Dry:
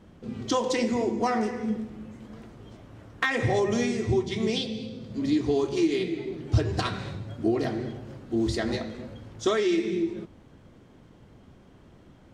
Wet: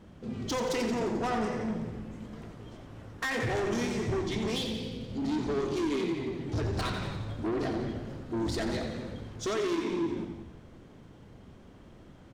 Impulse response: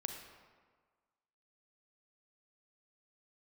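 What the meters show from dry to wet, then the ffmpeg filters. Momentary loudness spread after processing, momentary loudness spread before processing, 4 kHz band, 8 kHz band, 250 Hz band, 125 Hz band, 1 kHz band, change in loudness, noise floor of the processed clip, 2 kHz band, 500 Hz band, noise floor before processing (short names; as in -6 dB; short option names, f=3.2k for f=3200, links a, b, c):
13 LU, 16 LU, -3.5 dB, -2.5 dB, -4.5 dB, -4.0 dB, -3.5 dB, -5.0 dB, -52 dBFS, -4.0 dB, -5.0 dB, -54 dBFS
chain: -filter_complex "[0:a]asoftclip=type=tanh:threshold=-28dB,asplit=9[a][b][c][d][e][f][g][h][i];[b]adelay=88,afreqshift=-51,volume=-10dB[j];[c]adelay=176,afreqshift=-102,volume=-14dB[k];[d]adelay=264,afreqshift=-153,volume=-18dB[l];[e]adelay=352,afreqshift=-204,volume=-22dB[m];[f]adelay=440,afreqshift=-255,volume=-26.1dB[n];[g]adelay=528,afreqshift=-306,volume=-30.1dB[o];[h]adelay=616,afreqshift=-357,volume=-34.1dB[p];[i]adelay=704,afreqshift=-408,volume=-38.1dB[q];[a][j][k][l][m][n][o][p][q]amix=inputs=9:normalize=0,asplit=2[r][s];[1:a]atrim=start_sample=2205,asetrate=40572,aresample=44100,adelay=85[t];[s][t]afir=irnorm=-1:irlink=0,volume=-11dB[u];[r][u]amix=inputs=2:normalize=0"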